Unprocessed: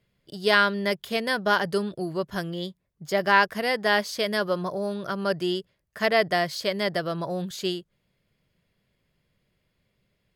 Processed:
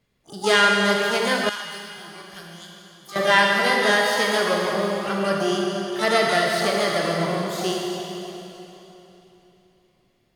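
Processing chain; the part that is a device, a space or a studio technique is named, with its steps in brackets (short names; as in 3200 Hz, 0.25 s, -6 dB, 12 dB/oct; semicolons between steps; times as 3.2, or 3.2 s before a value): shimmer-style reverb (harmoniser +12 st -7 dB; reverb RT60 3.4 s, pre-delay 25 ms, DRR -1.5 dB); 1.49–3.16 passive tone stack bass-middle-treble 5-5-5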